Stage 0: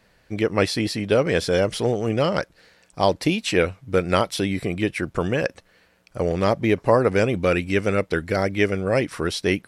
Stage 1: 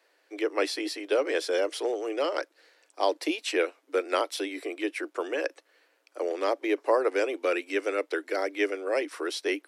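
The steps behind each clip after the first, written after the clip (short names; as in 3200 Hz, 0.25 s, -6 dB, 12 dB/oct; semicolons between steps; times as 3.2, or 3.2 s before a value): steep high-pass 290 Hz 96 dB/oct; gain -6 dB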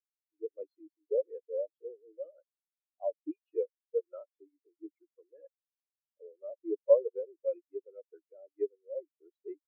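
spectral expander 4:1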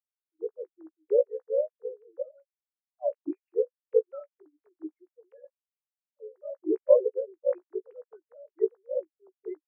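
sine-wave speech; doubler 16 ms -13 dB; gain +5.5 dB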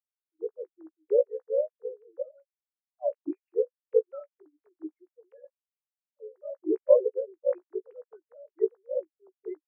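nothing audible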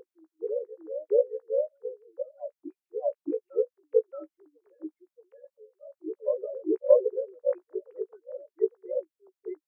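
reverse echo 0.624 s -9 dB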